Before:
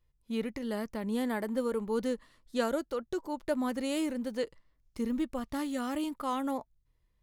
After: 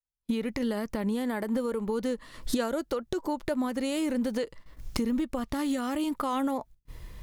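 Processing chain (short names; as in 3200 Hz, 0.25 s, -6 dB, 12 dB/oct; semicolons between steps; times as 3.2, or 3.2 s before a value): recorder AGC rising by 75 dB/s; gate -46 dBFS, range -34 dB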